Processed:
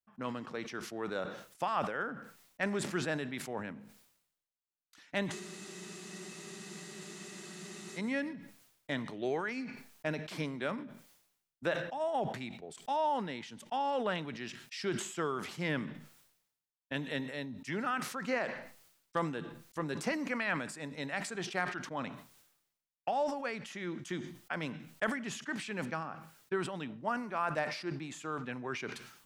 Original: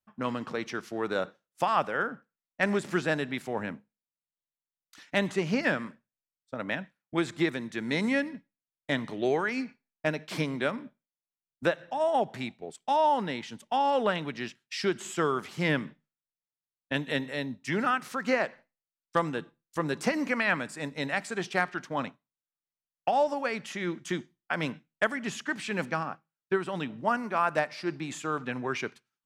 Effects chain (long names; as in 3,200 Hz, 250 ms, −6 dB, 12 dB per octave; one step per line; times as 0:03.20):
frozen spectrum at 0:05.33, 2.64 s
level that may fall only so fast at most 70 dB per second
level −7.5 dB